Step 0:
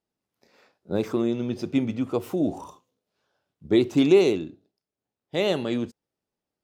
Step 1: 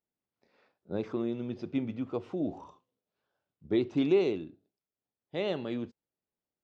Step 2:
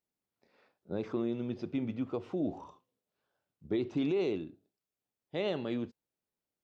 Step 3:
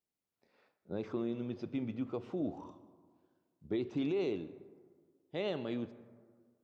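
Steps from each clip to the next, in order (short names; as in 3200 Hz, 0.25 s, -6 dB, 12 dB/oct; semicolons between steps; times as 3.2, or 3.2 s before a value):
Bessel low-pass 3600 Hz, order 4; gain -8 dB
limiter -23.5 dBFS, peak gain reduction 8 dB
plate-style reverb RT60 1.8 s, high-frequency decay 0.35×, pre-delay 0.11 s, DRR 16.5 dB; gain -3 dB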